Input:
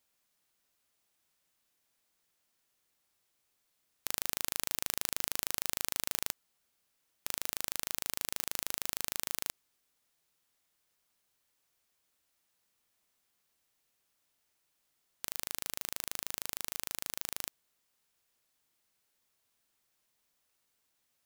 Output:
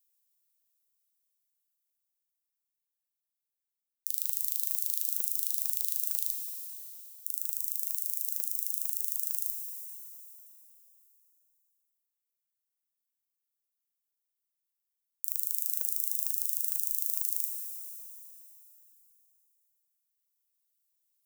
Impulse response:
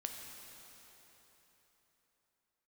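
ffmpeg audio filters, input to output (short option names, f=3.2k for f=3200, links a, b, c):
-filter_complex "[0:a]aemphasis=mode=production:type=75kf,afwtdn=0.0178,highshelf=f=2.9k:g=7.5,dynaudnorm=f=220:g=31:m=11.5dB[a];[1:a]atrim=start_sample=2205[b];[a][b]afir=irnorm=-1:irlink=0"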